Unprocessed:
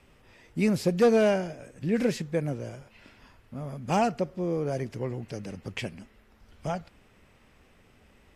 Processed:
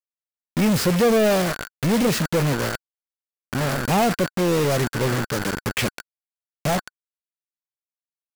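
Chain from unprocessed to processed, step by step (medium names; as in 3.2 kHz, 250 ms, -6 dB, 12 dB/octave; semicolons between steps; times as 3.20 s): word length cut 6-bit, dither none; band-stop 1.5 kHz, Q 5.3; power-law waveshaper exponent 0.35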